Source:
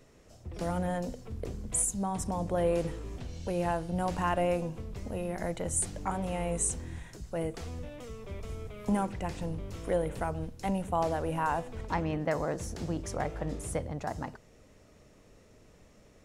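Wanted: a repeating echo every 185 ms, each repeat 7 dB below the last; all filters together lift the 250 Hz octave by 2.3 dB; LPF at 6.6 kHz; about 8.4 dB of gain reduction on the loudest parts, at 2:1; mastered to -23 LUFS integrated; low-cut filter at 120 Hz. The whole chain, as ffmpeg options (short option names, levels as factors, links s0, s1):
-af "highpass=120,lowpass=6600,equalizer=f=250:t=o:g=4.5,acompressor=threshold=0.0126:ratio=2,aecho=1:1:185|370|555|740|925:0.447|0.201|0.0905|0.0407|0.0183,volume=5.62"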